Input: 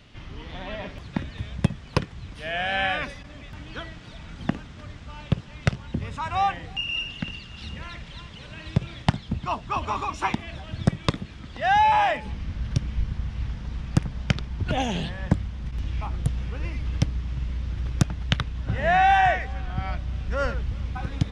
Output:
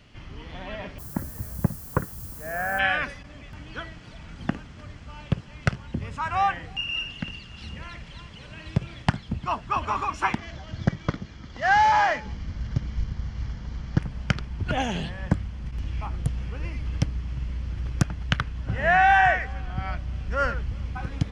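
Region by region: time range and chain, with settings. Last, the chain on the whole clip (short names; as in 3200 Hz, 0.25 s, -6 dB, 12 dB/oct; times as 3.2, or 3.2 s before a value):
0.98–2.78 inverse Chebyshev low-pass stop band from 4100 Hz, stop band 50 dB + added noise violet -41 dBFS
10.38–14 CVSD 32 kbps + notch 2600 Hz, Q 8
whole clip: notch 3700 Hz, Q 9; dynamic EQ 1500 Hz, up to +7 dB, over -40 dBFS, Q 1.7; gain -1.5 dB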